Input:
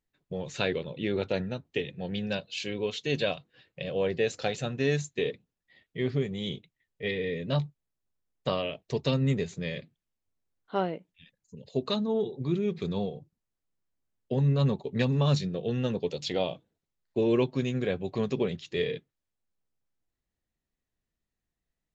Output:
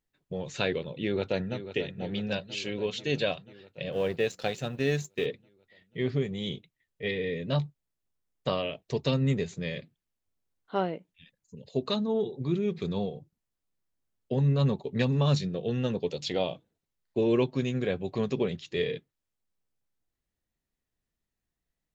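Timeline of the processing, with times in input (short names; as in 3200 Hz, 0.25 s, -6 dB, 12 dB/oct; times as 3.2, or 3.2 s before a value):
1.01–1.57 echo throw 0.49 s, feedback 70%, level -11.5 dB
3.92–5.26 G.711 law mismatch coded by A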